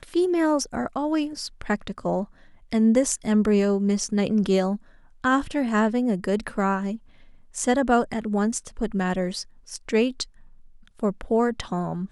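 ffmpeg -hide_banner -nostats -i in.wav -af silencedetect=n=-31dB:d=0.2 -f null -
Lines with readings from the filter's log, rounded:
silence_start: 2.24
silence_end: 2.73 | silence_duration: 0.49
silence_start: 4.76
silence_end: 5.24 | silence_duration: 0.48
silence_start: 6.96
silence_end: 7.56 | silence_duration: 0.60
silence_start: 9.42
silence_end: 9.72 | silence_duration: 0.29
silence_start: 10.23
silence_end: 11.00 | silence_duration: 0.76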